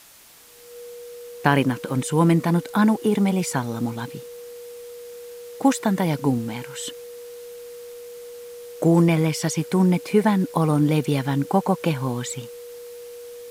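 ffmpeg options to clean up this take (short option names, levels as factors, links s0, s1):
-af "bandreject=f=480:w=30,afwtdn=0.004"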